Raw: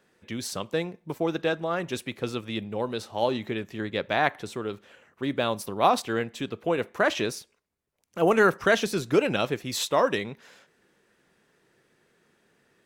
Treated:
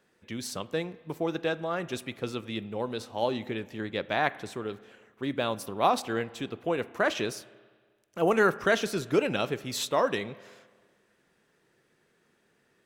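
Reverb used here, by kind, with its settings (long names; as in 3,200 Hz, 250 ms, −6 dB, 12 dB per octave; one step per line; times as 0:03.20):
spring reverb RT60 1.6 s, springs 32/44 ms, chirp 65 ms, DRR 18 dB
level −3 dB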